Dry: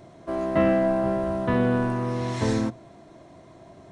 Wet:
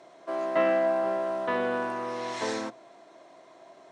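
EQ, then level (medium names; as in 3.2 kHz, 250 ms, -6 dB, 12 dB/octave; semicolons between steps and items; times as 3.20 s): high-pass 500 Hz 12 dB/octave; low-pass 8.3 kHz 12 dB/octave; 0.0 dB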